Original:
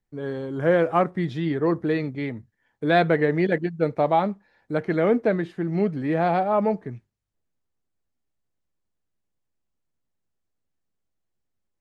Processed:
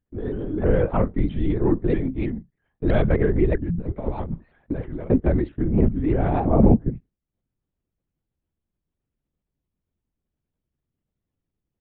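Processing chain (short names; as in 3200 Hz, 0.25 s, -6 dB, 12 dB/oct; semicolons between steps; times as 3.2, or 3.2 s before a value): bell 200 Hz +13 dB 2.4 oct; 3.64–5.11 negative-ratio compressor -19 dBFS, ratio -0.5; 6.46–6.9 tilt -3 dB/oct; LPC vocoder at 8 kHz whisper; shaped vibrato saw up 3.1 Hz, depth 160 cents; gain -6.5 dB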